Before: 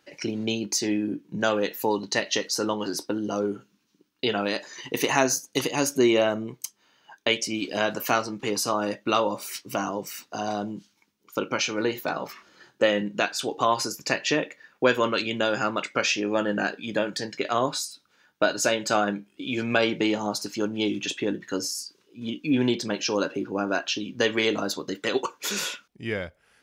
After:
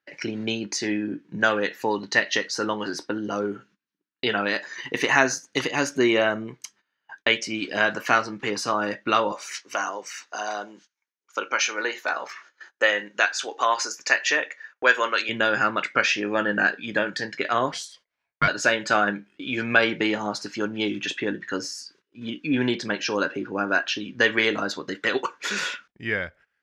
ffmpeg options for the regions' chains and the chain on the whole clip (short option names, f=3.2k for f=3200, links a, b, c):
-filter_complex "[0:a]asettb=1/sr,asplit=3[a][b][c];[a]atrim=end=9.324[d];[b]atrim=start=9.32:end=15.29,asetpts=PTS-STARTPTS,afade=t=in:d=0.004:c=qsin,afade=t=out:st=5.966:d=0.004:c=qsin,highpass=500,equalizer=f=6.4k:t=o:w=0.39:g=8.5[e];[c]atrim=start=15.286[f];[d][e]acrossfade=d=0.004:c1=hsin:c2=qsin[g];[g][f]acrossfade=d=0.004:c1=qsin:c2=hsin,asettb=1/sr,asplit=3[h][i][j];[h]atrim=end=17.724[k];[i]atrim=start=17.72:end=18.48,asetpts=PTS-STARTPTS,afade=t=in:d=0.004:c=qsin,afade=t=out:st=0.756:d=0.004:c=qsin,highshelf=f=8.9k:g=6.5,aeval=exprs='val(0)*sin(2*PI*780*n/s)':c=same[l];[j]atrim=start=18.476[m];[k][l]acrossfade=d=0.004:c1=hsin:c2=qsin[n];[n][m]acrossfade=d=0.004:c1=qsin:c2=hsin,lowpass=6.2k,agate=range=-21dB:threshold=-53dB:ratio=16:detection=peak,equalizer=f=1.7k:w=1.6:g=10.5,volume=-1dB"